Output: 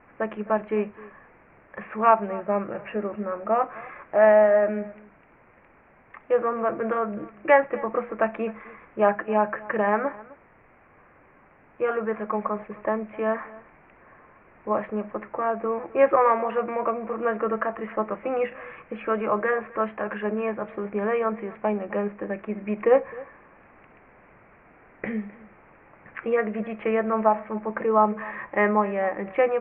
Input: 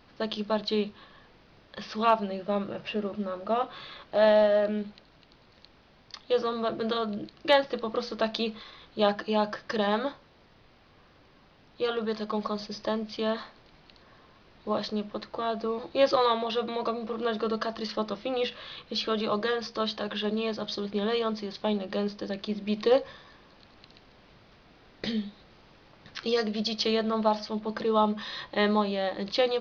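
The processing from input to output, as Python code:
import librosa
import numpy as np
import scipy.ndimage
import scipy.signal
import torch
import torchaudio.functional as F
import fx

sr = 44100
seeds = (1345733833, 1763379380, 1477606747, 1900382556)

y = scipy.signal.sosfilt(scipy.signal.butter(12, 2400.0, 'lowpass', fs=sr, output='sos'), x)
y = fx.low_shelf(y, sr, hz=320.0, db=-8.5)
y = y + 10.0 ** (-20.5 / 20.0) * np.pad(y, (int(259 * sr / 1000.0), 0))[:len(y)]
y = F.gain(torch.from_numpy(y), 6.5).numpy()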